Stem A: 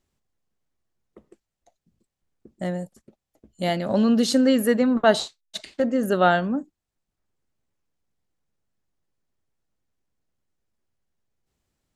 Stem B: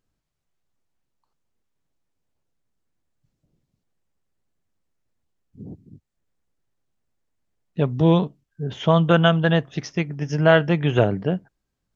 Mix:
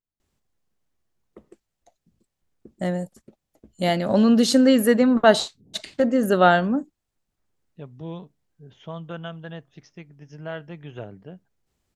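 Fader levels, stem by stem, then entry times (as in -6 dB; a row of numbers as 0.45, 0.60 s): +2.5, -18.5 dB; 0.20, 0.00 s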